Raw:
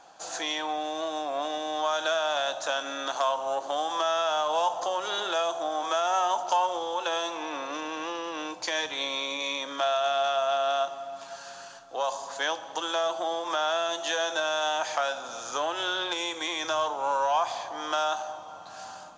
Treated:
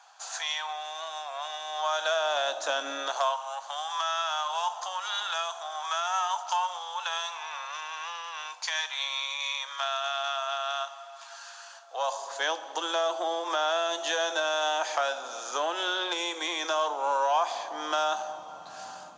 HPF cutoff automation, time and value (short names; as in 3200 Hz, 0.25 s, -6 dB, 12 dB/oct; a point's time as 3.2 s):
HPF 24 dB/oct
1.64 s 840 Hz
2.88 s 210 Hz
3.41 s 890 Hz
11.59 s 890 Hz
12.58 s 290 Hz
17.47 s 290 Hz
18.32 s 110 Hz